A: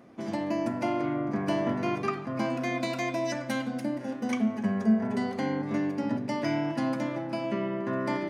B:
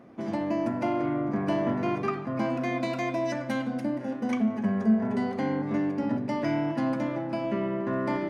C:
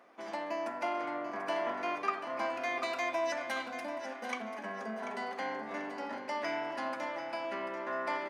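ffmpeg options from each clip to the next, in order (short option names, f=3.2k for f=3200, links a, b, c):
-filter_complex "[0:a]asplit=2[a][b];[b]asoftclip=type=hard:threshold=-29.5dB,volume=-10dB[c];[a][c]amix=inputs=2:normalize=0,highshelf=f=3.3k:g=-9.5"
-af "highpass=770,aecho=1:1:739|1478|2217|2956:0.316|0.108|0.0366|0.0124"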